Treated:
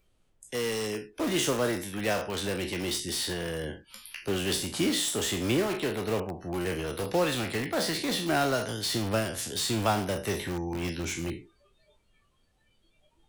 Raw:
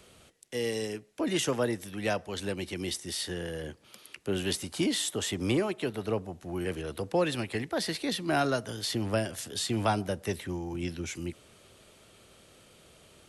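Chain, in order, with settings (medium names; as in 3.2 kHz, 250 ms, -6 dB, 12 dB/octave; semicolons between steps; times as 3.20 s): spectral sustain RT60 0.39 s; spectral noise reduction 25 dB; added noise brown -71 dBFS; in parallel at -7.5 dB: integer overflow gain 28 dB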